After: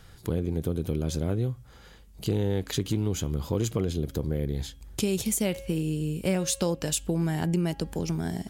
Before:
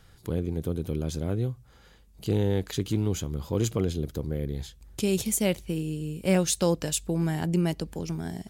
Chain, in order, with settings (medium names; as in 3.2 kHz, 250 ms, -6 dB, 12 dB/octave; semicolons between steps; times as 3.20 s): de-esser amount 35%; de-hum 273.2 Hz, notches 12; compression 3:1, threshold -29 dBFS, peak gain reduction 9 dB; trim +4.5 dB